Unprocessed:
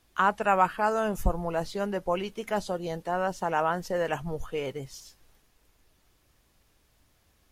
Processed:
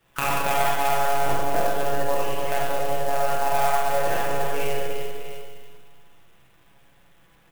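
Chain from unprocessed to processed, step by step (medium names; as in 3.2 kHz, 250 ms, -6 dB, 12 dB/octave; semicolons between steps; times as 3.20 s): tracing distortion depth 0.25 ms; multi-tap echo 289/627 ms -9.5/-14.5 dB; monotone LPC vocoder at 8 kHz 140 Hz; peaking EQ 230 Hz -3.5 dB 1.8 oct; compression 4:1, threshold -28 dBFS, peak gain reduction 12 dB; bass shelf 83 Hz -8.5 dB; comb 6 ms, depth 39%; Schroeder reverb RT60 1.4 s, combs from 31 ms, DRR -5.5 dB; sampling jitter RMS 0.038 ms; trim +4 dB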